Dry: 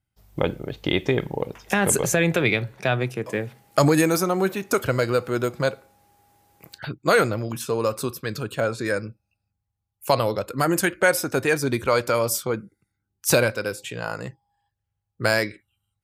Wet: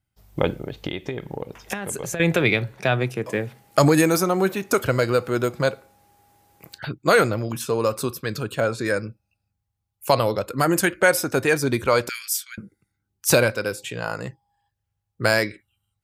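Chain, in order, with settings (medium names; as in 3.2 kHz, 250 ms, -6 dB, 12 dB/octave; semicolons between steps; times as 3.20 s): 0.52–2.20 s: compression 12:1, threshold -27 dBFS, peak gain reduction 12.5 dB; 12.09–12.58 s: Chebyshev high-pass 1.6 kHz, order 5; trim +1.5 dB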